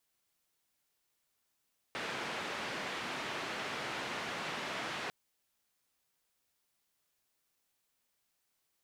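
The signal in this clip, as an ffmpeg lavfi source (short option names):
-f lavfi -i "anoisesrc=c=white:d=3.15:r=44100:seed=1,highpass=f=150,lowpass=f=2400,volume=-25.2dB"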